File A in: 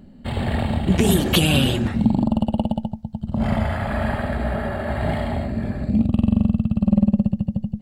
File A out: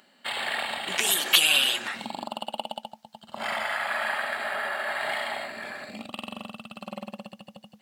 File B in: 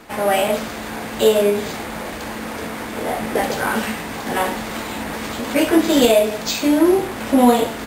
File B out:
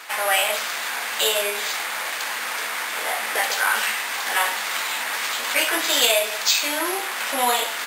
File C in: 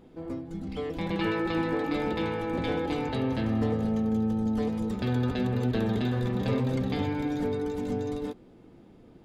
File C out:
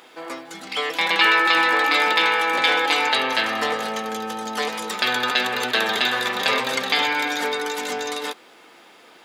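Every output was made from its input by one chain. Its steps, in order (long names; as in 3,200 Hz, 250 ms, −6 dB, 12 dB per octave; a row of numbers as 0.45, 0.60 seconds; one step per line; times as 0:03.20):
high-pass filter 1,300 Hz 12 dB per octave
in parallel at 0 dB: downward compressor, threshold −36 dBFS
on the sum: normalise the peak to −3 dBFS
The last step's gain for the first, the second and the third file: +1.5, +3.0, +16.0 decibels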